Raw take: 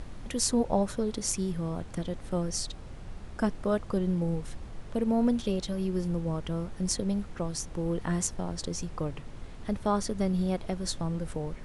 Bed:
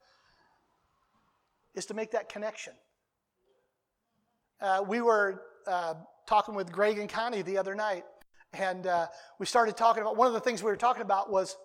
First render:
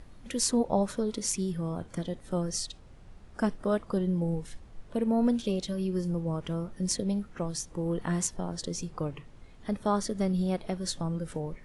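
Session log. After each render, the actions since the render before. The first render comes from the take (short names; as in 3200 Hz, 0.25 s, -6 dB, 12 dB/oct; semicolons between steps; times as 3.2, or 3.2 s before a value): noise print and reduce 9 dB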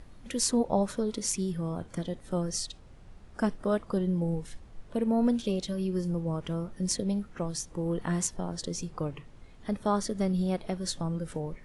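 nothing audible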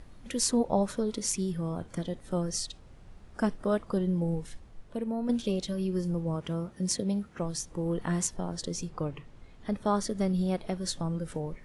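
4.45–5.29 fade out, to -8.5 dB; 6.36–7.39 HPF 66 Hz; 8.89–9.87 high shelf 10000 Hz -8 dB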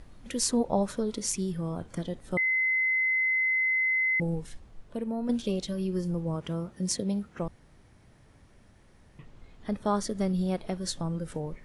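2.37–4.2 bleep 2050 Hz -23 dBFS; 7.48–9.19 room tone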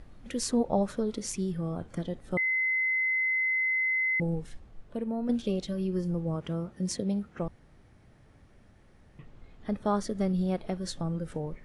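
high shelf 4000 Hz -7.5 dB; notch 980 Hz, Q 16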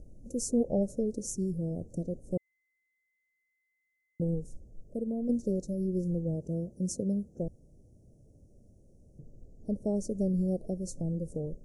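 elliptic band-stop 570–6300 Hz, stop band 40 dB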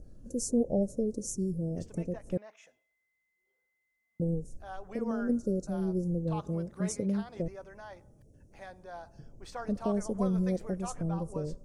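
add bed -16 dB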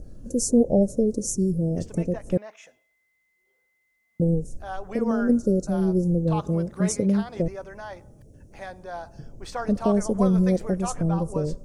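gain +9 dB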